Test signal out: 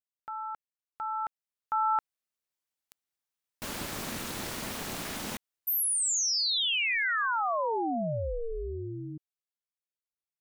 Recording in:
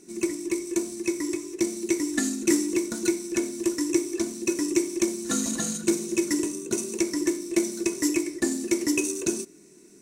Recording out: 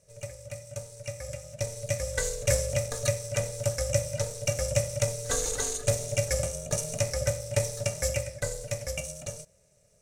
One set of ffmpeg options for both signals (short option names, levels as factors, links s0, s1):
-af "lowshelf=f=340:g=-4.5,dynaudnorm=f=110:g=31:m=5.01,aeval=exprs='val(0)*sin(2*PI*230*n/s)':c=same,volume=0.422"